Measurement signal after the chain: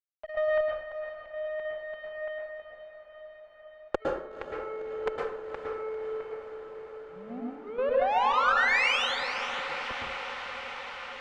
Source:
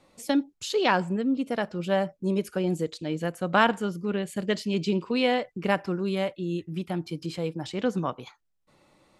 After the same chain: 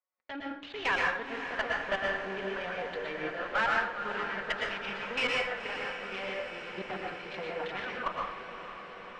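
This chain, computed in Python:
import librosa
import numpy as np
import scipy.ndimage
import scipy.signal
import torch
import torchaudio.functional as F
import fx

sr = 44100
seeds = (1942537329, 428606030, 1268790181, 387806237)

y = fx.wiener(x, sr, points=15)
y = fx.recorder_agc(y, sr, target_db=-10.0, rise_db_per_s=11.0, max_gain_db=30)
y = scipy.signal.sosfilt(scipy.signal.butter(2, 1400.0, 'highpass', fs=sr, output='sos'), y)
y = fx.env_flanger(y, sr, rest_ms=5.5, full_db=-14.5)
y = fx.leveller(y, sr, passes=5)
y = fx.level_steps(y, sr, step_db=10)
y = scipy.signal.sosfilt(scipy.signal.cheby2(4, 60, 8900.0, 'lowpass', fs=sr, output='sos'), y)
y = fx.cheby_harmonics(y, sr, harmonics=(6, 7), levels_db=(-25, -28), full_scale_db=-7.0)
y = fx.echo_diffused(y, sr, ms=499, feedback_pct=76, wet_db=-10)
y = fx.rev_plate(y, sr, seeds[0], rt60_s=0.62, hf_ratio=0.65, predelay_ms=100, drr_db=-1.5)
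y = F.gain(torch.from_numpy(y), -6.0).numpy()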